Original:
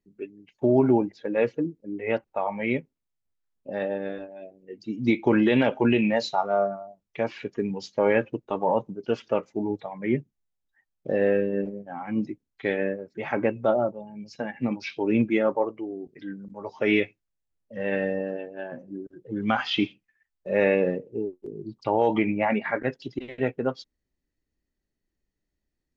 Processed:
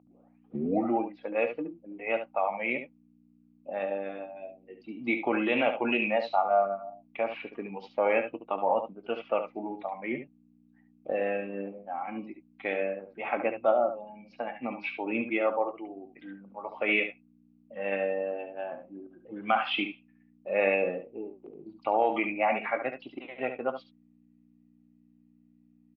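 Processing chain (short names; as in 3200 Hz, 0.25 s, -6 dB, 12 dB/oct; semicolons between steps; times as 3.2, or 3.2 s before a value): tape start at the beginning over 0.97 s; dynamic EQ 890 Hz, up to -6 dB, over -40 dBFS, Q 2.7; hum 60 Hz, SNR 17 dB; speaker cabinet 380–3000 Hz, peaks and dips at 410 Hz -8 dB, 750 Hz +8 dB, 1200 Hz +5 dB, 1700 Hz -8 dB, 2500 Hz +6 dB; early reflections 21 ms -16.5 dB, 71 ms -9 dB; gain -1.5 dB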